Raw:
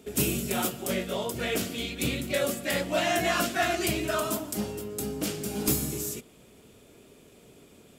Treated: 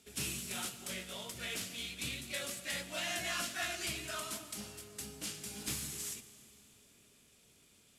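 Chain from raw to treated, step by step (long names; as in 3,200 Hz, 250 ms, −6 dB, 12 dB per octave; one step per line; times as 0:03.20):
variable-slope delta modulation 64 kbit/s
guitar amp tone stack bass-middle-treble 5-5-5
bucket-brigade delay 259 ms, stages 2,048, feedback 69%, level −21 dB
four-comb reverb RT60 3 s, combs from 33 ms, DRR 14 dB
level +1 dB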